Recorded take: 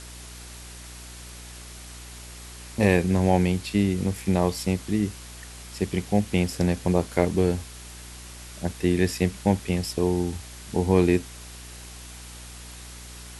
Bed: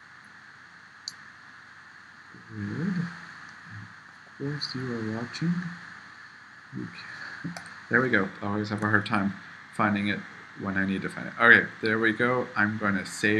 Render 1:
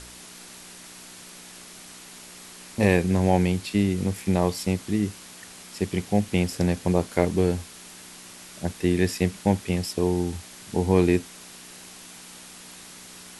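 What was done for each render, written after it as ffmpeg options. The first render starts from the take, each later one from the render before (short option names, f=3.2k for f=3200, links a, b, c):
-af "bandreject=f=60:t=h:w=4,bandreject=f=120:t=h:w=4"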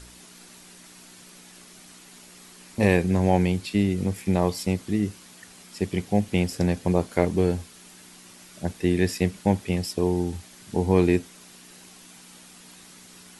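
-af "afftdn=nr=6:nf=-45"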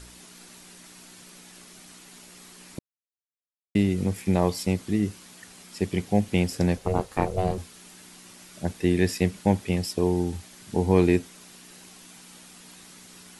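-filter_complex "[0:a]asettb=1/sr,asplit=3[a][b][c];[a]atrim=end=6.774[d];[b]atrim=start=6.77:end=7.58,asetpts=PTS-STARTPTS,afade=t=in:d=0.004:c=qsin,afade=t=out:st=0.806:d=0.004:c=qsin,aeval=exprs='val(0)*sin(2*PI*280*n/s)':c=same[e];[c]atrim=start=7.576[f];[d][e]acrossfade=d=0.004:c1=hsin:c2=qsin[g];[g][f]acrossfade=d=0.004:c1=qsin:c2=hsin,asplit=3[h][i][j];[h]atrim=end=2.79,asetpts=PTS-STARTPTS,afade=t=out:st=2.786:d=0.004:c=hsin[k];[i]atrim=start=2.79:end=3.75,asetpts=PTS-STARTPTS,volume=0[l];[j]atrim=start=3.75,asetpts=PTS-STARTPTS,afade=t=in:d=0.004:c=hsin[m];[k][l][m]concat=n=3:v=0:a=1"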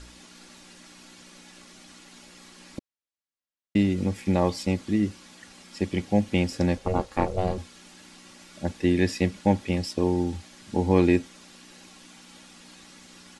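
-af "lowpass=6.7k,aecho=1:1:3.6:0.39"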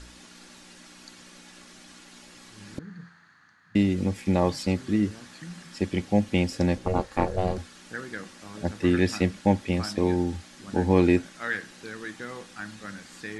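-filter_complex "[1:a]volume=-14dB[a];[0:a][a]amix=inputs=2:normalize=0"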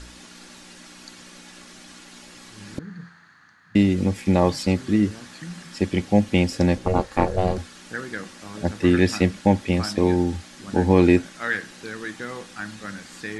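-af "volume=4.5dB,alimiter=limit=-3dB:level=0:latency=1"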